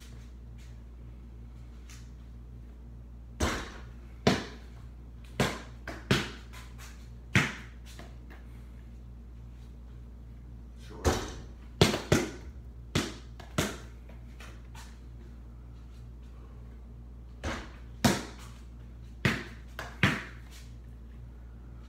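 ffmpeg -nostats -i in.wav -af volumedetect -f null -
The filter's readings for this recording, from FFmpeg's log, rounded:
mean_volume: -35.9 dB
max_volume: -5.5 dB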